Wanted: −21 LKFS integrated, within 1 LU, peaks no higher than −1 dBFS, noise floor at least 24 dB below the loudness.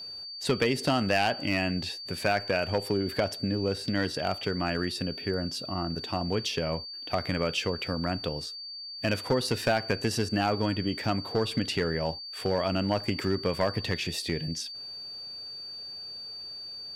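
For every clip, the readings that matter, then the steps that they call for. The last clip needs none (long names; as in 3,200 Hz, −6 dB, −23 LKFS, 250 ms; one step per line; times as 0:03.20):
share of clipped samples 0.3%; peaks flattened at −17.5 dBFS; interfering tone 4,600 Hz; level of the tone −38 dBFS; integrated loudness −30.0 LKFS; sample peak −17.5 dBFS; target loudness −21.0 LKFS
→ clipped peaks rebuilt −17.5 dBFS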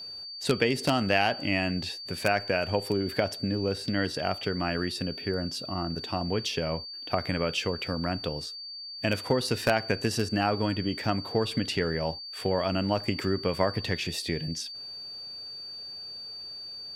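share of clipped samples 0.0%; interfering tone 4,600 Hz; level of the tone −38 dBFS
→ notch filter 4,600 Hz, Q 30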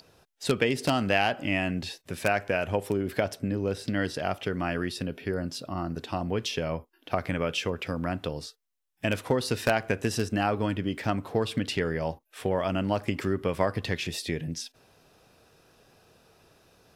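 interfering tone none found; integrated loudness −29.5 LKFS; sample peak −8.0 dBFS; target loudness −21.0 LKFS
→ level +8.5 dB
brickwall limiter −1 dBFS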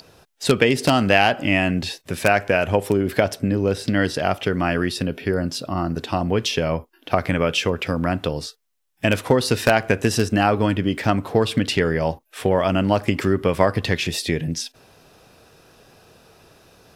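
integrated loudness −21.0 LKFS; sample peak −1.0 dBFS; background noise floor −61 dBFS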